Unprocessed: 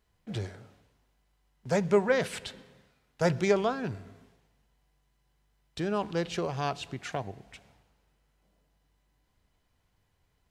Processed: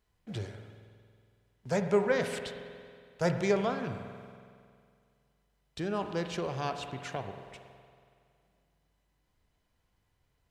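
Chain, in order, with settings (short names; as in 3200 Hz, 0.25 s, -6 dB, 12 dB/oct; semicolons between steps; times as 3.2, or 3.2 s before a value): spring tank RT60 2.2 s, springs 46 ms, chirp 55 ms, DRR 7 dB; gain -3 dB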